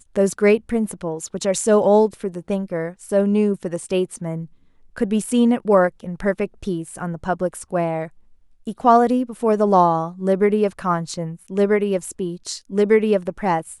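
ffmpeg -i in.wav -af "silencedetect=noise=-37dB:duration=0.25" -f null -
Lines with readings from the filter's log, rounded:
silence_start: 4.46
silence_end: 4.96 | silence_duration: 0.51
silence_start: 8.08
silence_end: 8.67 | silence_duration: 0.59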